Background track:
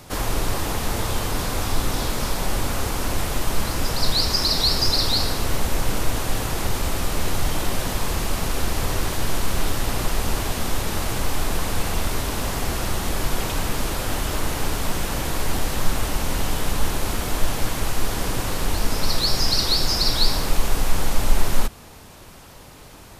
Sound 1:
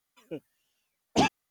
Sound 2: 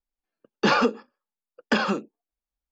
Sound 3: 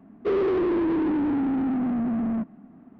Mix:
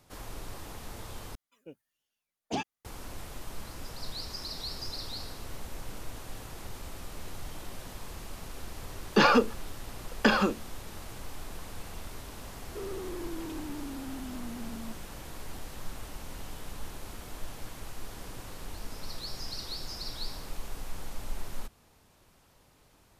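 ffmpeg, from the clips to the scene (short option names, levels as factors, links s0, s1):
-filter_complex "[0:a]volume=0.119,asplit=2[s0][s1];[s0]atrim=end=1.354[s2];[1:a]atrim=end=1.5,asetpts=PTS-STARTPTS,volume=0.335[s3];[s1]atrim=start=2.846[s4];[2:a]atrim=end=2.71,asetpts=PTS-STARTPTS,volume=0.891,afade=t=in:d=0.004:c=hsin,afade=t=out:st=2.706:d=0.004:c=hsin,adelay=8530[s5];[3:a]atrim=end=2.99,asetpts=PTS-STARTPTS,volume=0.15,afade=t=in:d=0.004:c=hsin,afade=t=out:st=2.986:d=0.004:c=hsin,adelay=12500[s6];[s2][s3]acrossfade=d=0.004:c1=hsin:c2=hsin[s7];[s7][s4]acrossfade=d=0.004:c1=hsin:c2=hsin[s8];[s8][s5][s6]amix=inputs=3:normalize=0"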